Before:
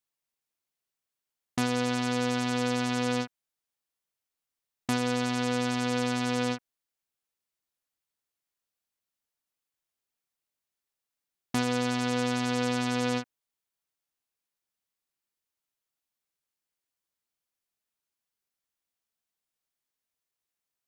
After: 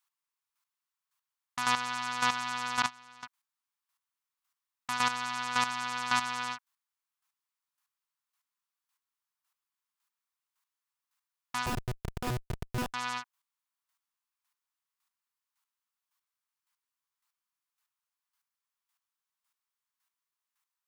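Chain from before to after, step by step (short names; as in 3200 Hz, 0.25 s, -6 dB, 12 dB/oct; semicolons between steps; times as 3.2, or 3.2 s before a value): chopper 1.8 Hz, depth 65%, duty 15%; resonant low shelf 690 Hz -14 dB, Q 3; 2.82–3.23 gate -33 dBFS, range -19 dB; 11.66–12.94 Schmitt trigger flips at -32.5 dBFS; gain +5.5 dB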